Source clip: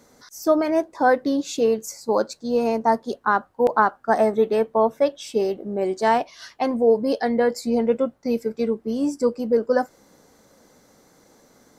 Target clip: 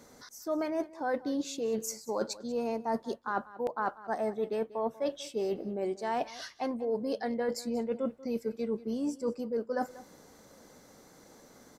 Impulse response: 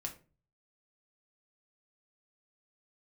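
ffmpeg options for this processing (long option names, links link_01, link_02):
-af "areverse,acompressor=threshold=-29dB:ratio=6,areverse,aecho=1:1:189:0.126,volume=-1dB"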